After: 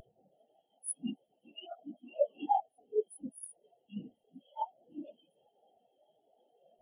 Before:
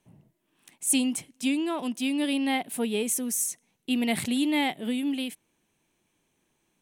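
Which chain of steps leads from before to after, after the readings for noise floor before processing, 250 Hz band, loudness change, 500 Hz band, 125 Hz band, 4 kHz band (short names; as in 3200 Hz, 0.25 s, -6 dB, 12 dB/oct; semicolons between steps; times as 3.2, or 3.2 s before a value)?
-75 dBFS, -19.5 dB, -11.0 dB, -3.0 dB, -10.5 dB, -22.5 dB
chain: per-bin compression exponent 0.2; fixed phaser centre 1500 Hz, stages 8; dynamic EQ 5200 Hz, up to -6 dB, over -48 dBFS, Q 2.6; level quantiser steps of 22 dB; sample leveller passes 5; spectral noise reduction 12 dB; whisperiser; spectral expander 4:1; gain +5 dB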